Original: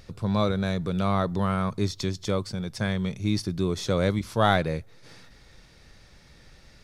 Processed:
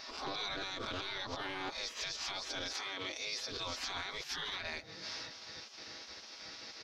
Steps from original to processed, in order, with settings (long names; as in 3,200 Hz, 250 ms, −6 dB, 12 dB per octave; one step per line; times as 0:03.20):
peak hold with a rise ahead of every peak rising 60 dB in 0.32 s
downward compressor 2.5 to 1, threshold −27 dBFS, peak gain reduction 8.5 dB
comb filter 6.2 ms, depth 94%
gate on every frequency bin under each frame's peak −20 dB weak
high shelf with overshoot 7,000 Hz −10.5 dB, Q 3
brickwall limiter −33 dBFS, peak gain reduction 9.5 dB
0:02.72–0:03.50: high-pass filter 400 Hz → 100 Hz 6 dB per octave
highs frequency-modulated by the lows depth 0.18 ms
level +3.5 dB